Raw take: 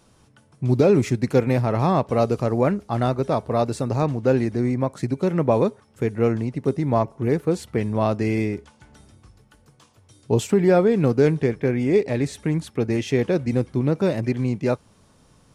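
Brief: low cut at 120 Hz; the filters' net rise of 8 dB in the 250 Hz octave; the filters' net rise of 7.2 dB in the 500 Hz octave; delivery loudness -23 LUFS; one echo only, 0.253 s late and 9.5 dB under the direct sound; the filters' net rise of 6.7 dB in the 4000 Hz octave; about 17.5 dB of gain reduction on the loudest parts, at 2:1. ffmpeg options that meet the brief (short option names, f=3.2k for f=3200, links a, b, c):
-af "highpass=120,equalizer=f=250:t=o:g=8.5,equalizer=f=500:t=o:g=6,equalizer=f=4k:t=o:g=8,acompressor=threshold=-39dB:ratio=2,aecho=1:1:253:0.335,volume=7.5dB"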